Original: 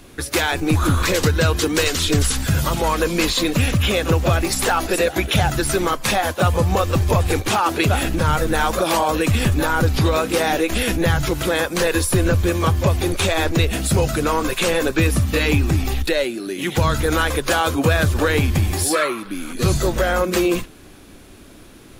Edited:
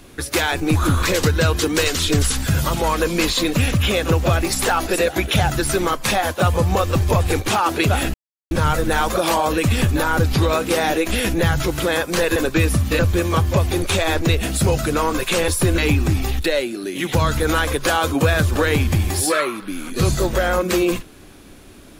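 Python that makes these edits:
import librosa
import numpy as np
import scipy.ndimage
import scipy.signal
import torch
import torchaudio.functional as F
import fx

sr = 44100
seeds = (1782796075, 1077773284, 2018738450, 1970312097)

y = fx.edit(x, sr, fx.insert_silence(at_s=8.14, length_s=0.37),
    fx.swap(start_s=11.99, length_s=0.3, other_s=14.78, other_length_s=0.63), tone=tone)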